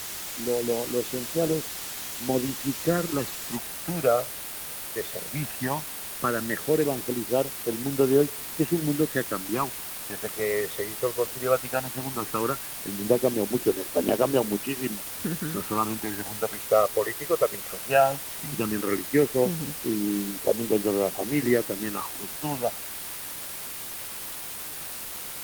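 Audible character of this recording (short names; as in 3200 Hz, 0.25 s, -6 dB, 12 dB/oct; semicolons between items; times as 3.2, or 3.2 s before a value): phasing stages 12, 0.16 Hz, lowest notch 260–1900 Hz; a quantiser's noise floor 6-bit, dither triangular; Opus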